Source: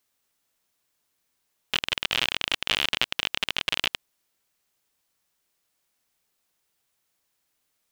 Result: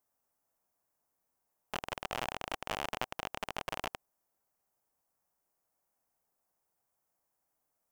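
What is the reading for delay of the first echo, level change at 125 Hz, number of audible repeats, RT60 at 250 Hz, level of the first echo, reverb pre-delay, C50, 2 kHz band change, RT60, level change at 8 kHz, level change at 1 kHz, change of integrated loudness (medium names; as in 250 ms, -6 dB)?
no echo, -5.0 dB, no echo, no reverb, no echo, no reverb, no reverb, -13.5 dB, no reverb, -10.5 dB, -2.0 dB, -13.5 dB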